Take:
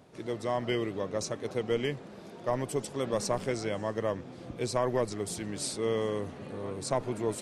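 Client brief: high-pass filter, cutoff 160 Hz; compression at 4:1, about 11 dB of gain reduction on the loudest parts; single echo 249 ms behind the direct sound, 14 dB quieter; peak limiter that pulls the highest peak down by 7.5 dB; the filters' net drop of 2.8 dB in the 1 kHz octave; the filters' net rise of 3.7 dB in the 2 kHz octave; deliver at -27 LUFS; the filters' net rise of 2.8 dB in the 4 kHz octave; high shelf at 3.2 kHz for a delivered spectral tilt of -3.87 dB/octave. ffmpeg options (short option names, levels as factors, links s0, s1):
-af "highpass=160,equalizer=f=1000:t=o:g=-4.5,equalizer=f=2000:t=o:g=5.5,highshelf=f=3200:g=-5.5,equalizer=f=4000:t=o:g=6.5,acompressor=threshold=0.0112:ratio=4,alimiter=level_in=2.99:limit=0.0631:level=0:latency=1,volume=0.335,aecho=1:1:249:0.2,volume=7.08"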